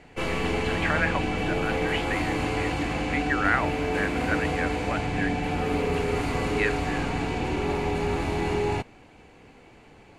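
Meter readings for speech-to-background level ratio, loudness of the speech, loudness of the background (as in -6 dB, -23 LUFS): -3.5 dB, -31.0 LUFS, -27.5 LUFS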